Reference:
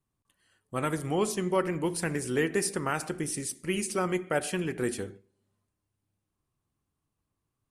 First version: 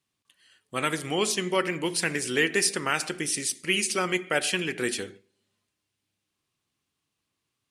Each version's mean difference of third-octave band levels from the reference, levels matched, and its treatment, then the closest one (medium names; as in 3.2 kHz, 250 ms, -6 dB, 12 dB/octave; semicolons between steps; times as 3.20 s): 4.0 dB: frequency weighting D; trim +1 dB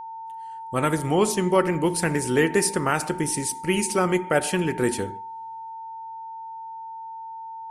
1.0 dB: whistle 900 Hz -41 dBFS; trim +7 dB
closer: second